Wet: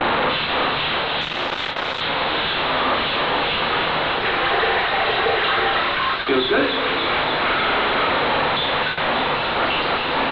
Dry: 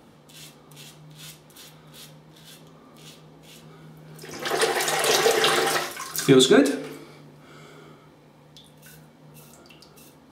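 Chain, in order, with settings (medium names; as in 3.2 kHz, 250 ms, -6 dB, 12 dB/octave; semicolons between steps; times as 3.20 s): one-bit delta coder 64 kbps, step -20 dBFS; doubling 42 ms -6 dB; feedback echo behind a high-pass 292 ms, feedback 65%, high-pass 2.9 kHz, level -6.5 dB; gain riding within 4 dB 0.5 s; high-pass 590 Hz 6 dB/octave; overdrive pedal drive 29 dB, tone 1.6 kHz, clips at -7 dBFS; Chebyshev low-pass 4 kHz, order 6; gate with hold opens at -13 dBFS; 1.21–2.01 s: transformer saturation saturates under 840 Hz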